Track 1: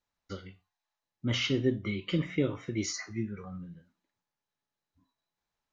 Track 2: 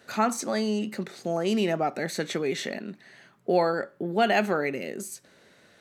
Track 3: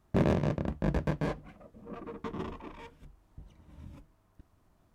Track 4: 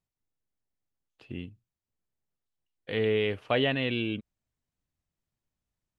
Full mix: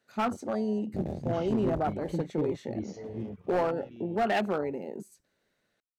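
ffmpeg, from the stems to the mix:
-filter_complex "[0:a]volume=0.668[s0];[1:a]highpass=f=71:w=0.5412,highpass=f=71:w=1.3066,volume=0.75[s1];[2:a]aemphasis=mode=production:type=75kf,adelay=800,volume=0.376[s2];[3:a]bandreject=f=142.4:t=h:w=4,bandreject=f=284.8:t=h:w=4,bandreject=f=427.2:t=h:w=4,bandreject=f=569.6:t=h:w=4,bandreject=f=712:t=h:w=4,bandreject=f=854.4:t=h:w=4,bandreject=f=996.8:t=h:w=4,bandreject=f=1139.2:t=h:w=4,bandreject=f=1281.6:t=h:w=4,bandreject=f=1424:t=h:w=4,bandreject=f=1566.4:t=h:w=4,bandreject=f=1708.8:t=h:w=4,bandreject=f=1851.2:t=h:w=4,bandreject=f=1993.6:t=h:w=4,bandreject=f=2136:t=h:w=4,bandreject=f=2278.4:t=h:w=4,bandreject=f=2420.8:t=h:w=4,bandreject=f=2563.2:t=h:w=4,bandreject=f=2705.6:t=h:w=4,bandreject=f=2848:t=h:w=4,bandreject=f=2990.4:t=h:w=4,bandreject=f=3132.8:t=h:w=4,bandreject=f=3275.2:t=h:w=4,bandreject=f=3417.6:t=h:w=4,bandreject=f=3560:t=h:w=4,bandreject=f=3702.4:t=h:w=4,bandreject=f=3844.8:t=h:w=4,bandreject=f=3987.2:t=h:w=4,bandreject=f=4129.6:t=h:w=4,bandreject=f=4272:t=h:w=4,bandreject=f=4414.4:t=h:w=4,bandreject=f=4556.8:t=h:w=4,bandreject=f=4699.2:t=h:w=4,aeval=exprs='(tanh(7.94*val(0)+0.3)-tanh(0.3))/7.94':c=same,volume=0.251[s3];[s0][s1][s2][s3]amix=inputs=4:normalize=0,afwtdn=0.0316,volume=11.9,asoftclip=hard,volume=0.0841"

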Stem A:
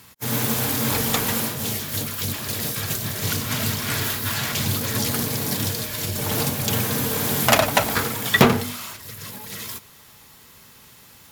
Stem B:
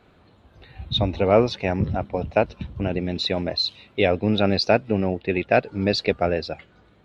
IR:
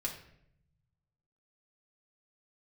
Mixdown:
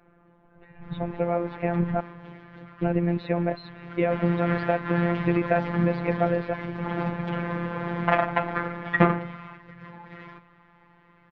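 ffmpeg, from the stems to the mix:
-filter_complex "[0:a]adelay=600,volume=0.562,afade=t=in:st=3.9:d=0.46:silence=0.266073,asplit=2[s0][s1];[s1]volume=0.355[s2];[1:a]acompressor=threshold=0.0794:ratio=6,volume=1.12,asplit=3[s3][s4][s5];[s3]atrim=end=2,asetpts=PTS-STARTPTS,afade=t=out:st=1.996:d=0.004:c=hsin[s6];[s4]atrim=start=2:end=2.82,asetpts=PTS-STARTPTS,volume=0[s7];[s5]atrim=start=2.82,asetpts=PTS-STARTPTS,afade=t=in:d=0.004:c=hsin[s8];[s6][s7][s8]concat=n=3:v=0:a=1[s9];[2:a]atrim=start_sample=2205[s10];[s2][s10]afir=irnorm=-1:irlink=0[s11];[s0][s9][s11]amix=inputs=3:normalize=0,lowpass=f=2000:w=0.5412,lowpass=f=2000:w=1.3066,dynaudnorm=f=330:g=9:m=2.11,afftfilt=real='hypot(re,im)*cos(PI*b)':imag='0':win_size=1024:overlap=0.75"

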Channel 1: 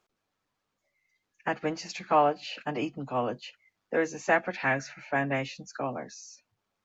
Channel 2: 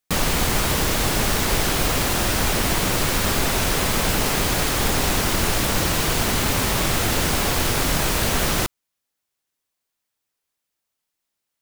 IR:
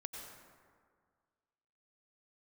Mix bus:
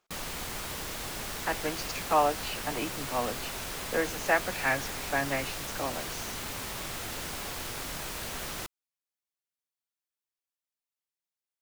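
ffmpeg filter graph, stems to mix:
-filter_complex "[0:a]volume=1[s0];[1:a]volume=0.188[s1];[s0][s1]amix=inputs=2:normalize=0,lowshelf=f=430:g=-6"

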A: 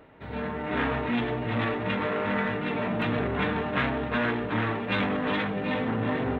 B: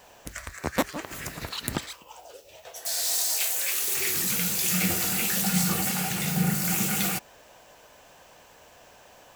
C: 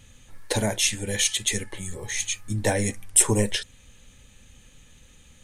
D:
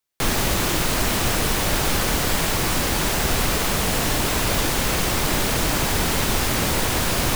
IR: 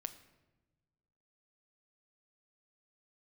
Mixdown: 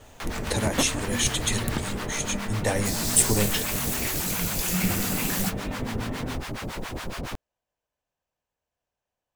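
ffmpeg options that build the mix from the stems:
-filter_complex "[0:a]acrossover=split=260[s0][s1];[s1]acompressor=threshold=0.0141:ratio=6[s2];[s0][s2]amix=inputs=2:normalize=0,volume=0.75,asplit=3[s3][s4][s5];[s3]atrim=end=4.09,asetpts=PTS-STARTPTS,afade=t=out:st=4.086:d=0.004:c=hsin[s6];[s4]atrim=start=4.09:end=4.78,asetpts=PTS-STARTPTS,volume=0[s7];[s5]atrim=start=4.78,asetpts=PTS-STARTPTS,afade=t=in:d=0.004:c=hsin[s8];[s6][s7][s8]concat=n=3:v=0:a=1[s9];[1:a]lowshelf=f=150:g=11,volume=0.708[s10];[2:a]volume=0.75,asplit=2[s11][s12];[3:a]lowpass=f=2700:p=1,acrossover=split=690[s13][s14];[s13]aeval=exprs='val(0)*(1-1/2+1/2*cos(2*PI*7.2*n/s))':c=same[s15];[s14]aeval=exprs='val(0)*(1-1/2-1/2*cos(2*PI*7.2*n/s))':c=same[s16];[s15][s16]amix=inputs=2:normalize=0,volume=0.501[s17];[s12]apad=whole_len=412716[s18];[s10][s18]sidechaingate=range=0.0224:threshold=0.001:ratio=16:detection=peak[s19];[s9][s19][s11][s17]amix=inputs=4:normalize=0"

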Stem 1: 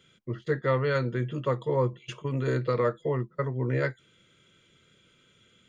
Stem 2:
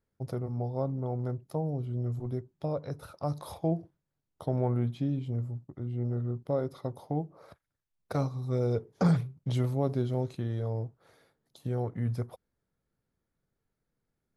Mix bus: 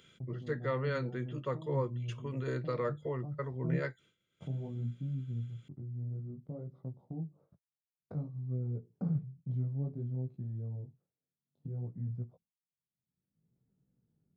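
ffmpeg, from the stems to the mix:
-filter_complex "[0:a]volume=0.376[s0];[1:a]flanger=delay=15.5:depth=7.9:speed=0.58,bandpass=f=160:t=q:w=1.9:csg=0,volume=0.891[s1];[s0][s1]amix=inputs=2:normalize=0,agate=range=0.0224:threshold=0.00158:ratio=3:detection=peak,acompressor=mode=upward:threshold=0.0112:ratio=2.5"

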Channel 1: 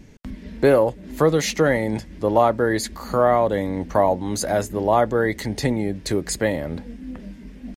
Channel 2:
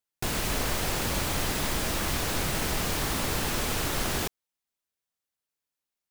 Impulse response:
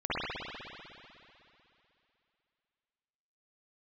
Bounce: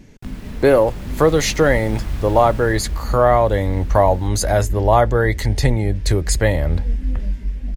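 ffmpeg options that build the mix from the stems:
-filter_complex "[0:a]asubboost=boost=12:cutoff=67,volume=1.19[s0];[1:a]bass=f=250:g=13,treble=f=4000:g=-7,dynaudnorm=f=280:g=9:m=1.78,volume=0.2,afade=t=out:st=2.43:d=0.73:silence=0.316228[s1];[s0][s1]amix=inputs=2:normalize=0,dynaudnorm=f=140:g=9:m=2"

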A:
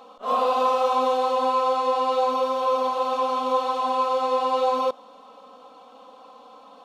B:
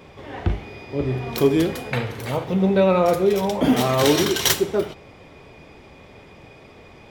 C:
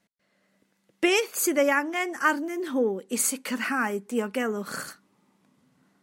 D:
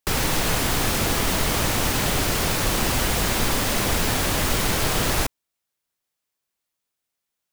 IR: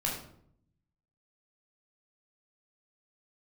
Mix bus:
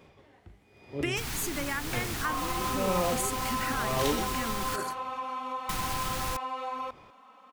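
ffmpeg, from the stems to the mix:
-filter_complex "[0:a]equalizer=f=500:t=o:w=1:g=-9,equalizer=f=2000:t=o:w=1:g=11,equalizer=f=4000:t=o:w=1:g=-8,acompressor=threshold=0.0447:ratio=2.5,adelay=2000,volume=0.473[s0];[1:a]aeval=exprs='val(0)*pow(10,-20*(0.5-0.5*cos(2*PI*1*n/s))/20)':c=same,volume=0.299[s1];[2:a]volume=0.841[s2];[3:a]adelay=1100,volume=0.398,asplit=3[s3][s4][s5];[s3]atrim=end=4.76,asetpts=PTS-STARTPTS,afade=t=out:st=4.756:d=0.004:c=hsin[s6];[s4]atrim=start=4.76:end=5.69,asetpts=PTS-STARTPTS,volume=0[s7];[s5]atrim=start=5.69,asetpts=PTS-STARTPTS,afade=t=in:d=0.004:c=hsin[s8];[s6][s7][s8]concat=n=3:v=0:a=1[s9];[s2][s9]amix=inputs=2:normalize=0,equalizer=f=520:t=o:w=0.77:g=-12,acompressor=threshold=0.0282:ratio=3,volume=1[s10];[s0][s1][s10]amix=inputs=3:normalize=0"

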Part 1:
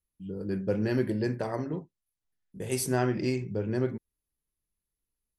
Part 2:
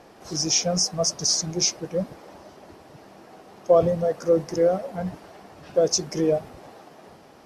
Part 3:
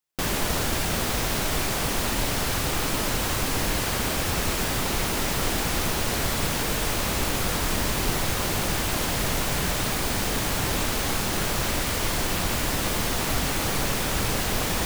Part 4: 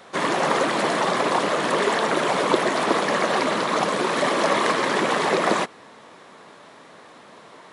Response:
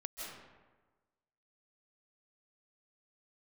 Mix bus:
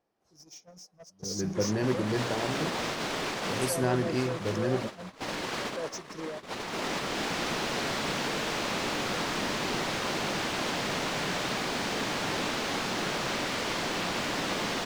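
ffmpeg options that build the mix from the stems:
-filter_complex "[0:a]adelay=900,volume=0.891[s0];[1:a]acompressor=threshold=0.0562:ratio=3,asoftclip=type=tanh:threshold=0.0501,volume=0.531,asplit=3[s1][s2][s3];[s2]volume=0.133[s4];[2:a]acrossover=split=150 6400:gain=0.0891 1 0.1[s5][s6][s7];[s5][s6][s7]amix=inputs=3:normalize=0,adelay=1650,volume=0.708,asplit=2[s8][s9];[s9]volume=0.112[s10];[3:a]adelay=1400,volume=0.112[s11];[s3]apad=whole_len=728087[s12];[s8][s12]sidechaincompress=threshold=0.00355:ratio=16:attack=5.8:release=155[s13];[4:a]atrim=start_sample=2205[s14];[s4][s10]amix=inputs=2:normalize=0[s15];[s15][s14]afir=irnorm=-1:irlink=0[s16];[s0][s1][s13][s11][s16]amix=inputs=5:normalize=0,agate=range=0.0562:threshold=0.0224:ratio=16:detection=peak"

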